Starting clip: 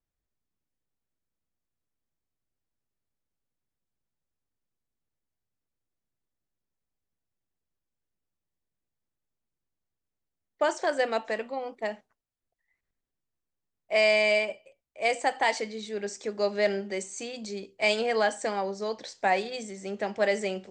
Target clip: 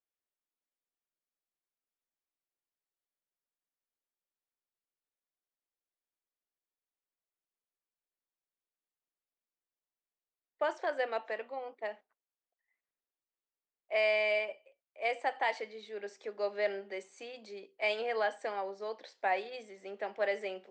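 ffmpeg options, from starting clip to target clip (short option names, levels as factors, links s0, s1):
-filter_complex "[0:a]acrossover=split=310 4000:gain=0.0631 1 0.112[s0][s1][s2];[s0][s1][s2]amix=inputs=3:normalize=0,volume=0.501"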